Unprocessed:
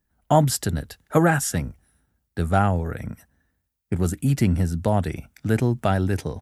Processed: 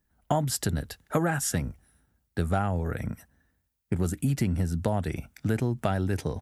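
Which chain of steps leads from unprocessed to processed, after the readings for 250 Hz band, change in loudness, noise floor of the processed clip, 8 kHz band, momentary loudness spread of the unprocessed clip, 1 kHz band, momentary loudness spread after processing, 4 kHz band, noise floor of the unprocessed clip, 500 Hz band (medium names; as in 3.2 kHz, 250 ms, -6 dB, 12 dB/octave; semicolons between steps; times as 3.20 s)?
-5.5 dB, -6.0 dB, -76 dBFS, -3.5 dB, 12 LU, -7.5 dB, 8 LU, -4.0 dB, -76 dBFS, -6.5 dB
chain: compression 4:1, threshold -23 dBFS, peak gain reduction 10.5 dB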